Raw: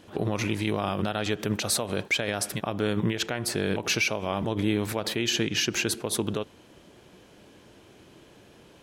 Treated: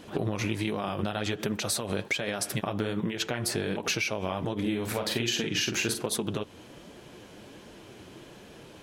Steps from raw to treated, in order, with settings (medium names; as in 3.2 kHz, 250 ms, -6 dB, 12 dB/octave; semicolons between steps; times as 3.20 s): compression, threshold -31 dBFS, peak gain reduction 10.5 dB; flange 1.3 Hz, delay 3.7 ms, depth 7.5 ms, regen -37%; 4.60–6.06 s: doubling 43 ms -6 dB; trim +8.5 dB